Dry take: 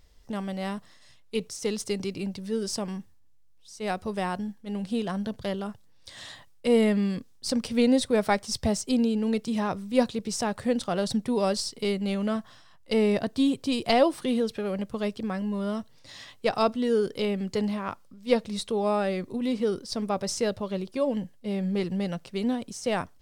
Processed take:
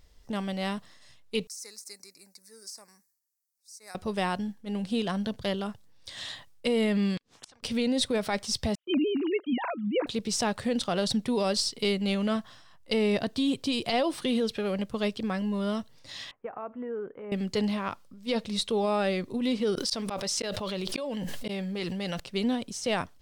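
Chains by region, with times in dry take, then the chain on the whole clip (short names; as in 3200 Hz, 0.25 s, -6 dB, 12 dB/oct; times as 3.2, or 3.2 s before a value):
1.47–3.95 Butterworth band-stop 3100 Hz, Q 1.4 + differentiator + de-esser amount 80%
7.17–7.63 flipped gate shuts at -27 dBFS, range -40 dB + air absorption 94 m + spectral compressor 10:1
8.75–10.07 sine-wave speech + gate -48 dBFS, range -29 dB
16.31–17.32 tilt +4.5 dB/oct + compressor 5:1, threshold -29 dBFS + Gaussian blur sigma 6.3 samples
19.75–22.2 low shelf 430 Hz -8 dB + auto swell 0.598 s + fast leveller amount 100%
whole clip: limiter -19.5 dBFS; dynamic EQ 3400 Hz, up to +6 dB, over -51 dBFS, Q 0.92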